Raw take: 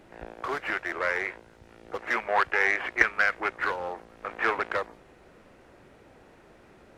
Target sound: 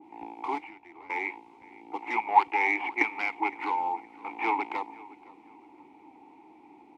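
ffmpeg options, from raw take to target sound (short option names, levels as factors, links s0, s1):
-filter_complex "[0:a]firequalizer=gain_entry='entry(150,0);entry(840,12);entry(1200,2);entry(8900,14)':delay=0.05:min_phase=1,asettb=1/sr,asplit=3[s0][s1][s2];[s0]atrim=end=0.584[s3];[s1]atrim=start=0.58:end=1.1,asetpts=PTS-STARTPTS,afade=t=in:d=0.004:c=qsin,afade=t=out:st=0.516:d=0.004:c=qsin,acrossover=split=140[s4][s5];[s5]acompressor=threshold=0.01:ratio=10[s6];[s4][s6]amix=inputs=2:normalize=0[s7];[s2]atrim=start=1.096[s8];[s3][s7]acrossfade=d=0.004:c1=hsin:c2=qsin[s9];[s9][s8]acrossfade=d=0.004:c1=qsin:c2=hsin,asplit=3[s10][s11][s12];[s10]bandpass=f=300:t=q:w=8,volume=1[s13];[s11]bandpass=f=870:t=q:w=8,volume=0.501[s14];[s12]bandpass=f=2240:t=q:w=8,volume=0.355[s15];[s13][s14][s15]amix=inputs=3:normalize=0,asplit=2[s16][s17];[s17]adelay=515,lowpass=f=3200:p=1,volume=0.0944,asplit=2[s18][s19];[s19]adelay=515,lowpass=f=3200:p=1,volume=0.37,asplit=2[s20][s21];[s21]adelay=515,lowpass=f=3200:p=1,volume=0.37[s22];[s16][s18][s20][s22]amix=inputs=4:normalize=0,adynamicequalizer=threshold=0.00178:dfrequency=1900:dqfactor=0.7:tfrequency=1900:tqfactor=0.7:attack=5:release=100:ratio=0.375:range=2:mode=boostabove:tftype=highshelf,volume=2.24"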